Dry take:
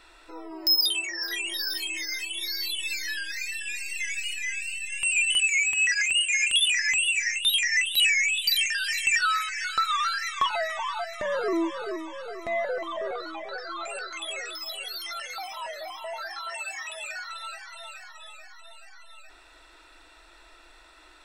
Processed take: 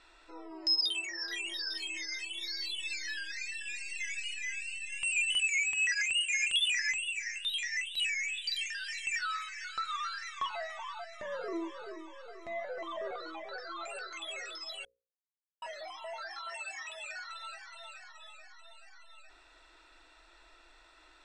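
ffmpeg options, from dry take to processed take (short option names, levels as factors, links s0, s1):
-filter_complex "[0:a]asplit=3[s0][s1][s2];[s0]afade=t=out:st=6.91:d=0.02[s3];[s1]flanger=delay=6.5:depth=5.5:regen=84:speed=1:shape=sinusoidal,afade=t=in:st=6.91:d=0.02,afade=t=out:st=12.77:d=0.02[s4];[s2]afade=t=in:st=12.77:d=0.02[s5];[s3][s4][s5]amix=inputs=3:normalize=0,asplit=3[s6][s7][s8];[s6]atrim=end=14.85,asetpts=PTS-STARTPTS,afade=t=out:st=14.846:d=0.004:c=hsin[s9];[s7]atrim=start=14.85:end=15.62,asetpts=PTS-STARTPTS,volume=0[s10];[s8]atrim=start=15.62,asetpts=PTS-STARTPTS,afade=t=in:d=0.004:c=hsin[s11];[s9][s10][s11]concat=n=3:v=0:a=1,lowpass=f=8200:w=0.5412,lowpass=f=8200:w=1.3066,bandreject=f=60:t=h:w=6,bandreject=f=120:t=h:w=6,bandreject=f=180:t=h:w=6,bandreject=f=240:t=h:w=6,bandreject=f=300:t=h:w=6,bandreject=f=360:t=h:w=6,bandreject=f=420:t=h:w=6,bandreject=f=480:t=h:w=6,bandreject=f=540:t=h:w=6,volume=0.473"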